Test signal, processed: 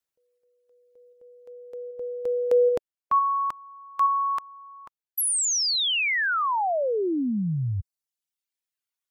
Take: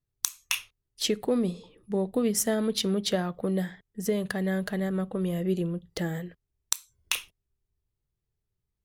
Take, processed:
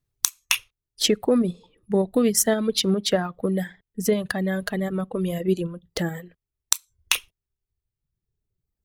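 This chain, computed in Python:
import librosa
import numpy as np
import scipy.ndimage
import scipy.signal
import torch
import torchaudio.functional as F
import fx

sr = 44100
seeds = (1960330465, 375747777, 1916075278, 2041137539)

p1 = fx.dereverb_blind(x, sr, rt60_s=1.6)
p2 = fx.level_steps(p1, sr, step_db=9)
p3 = p1 + F.gain(torch.from_numpy(p2), 0.0).numpy()
y = F.gain(torch.from_numpy(p3), 2.0).numpy()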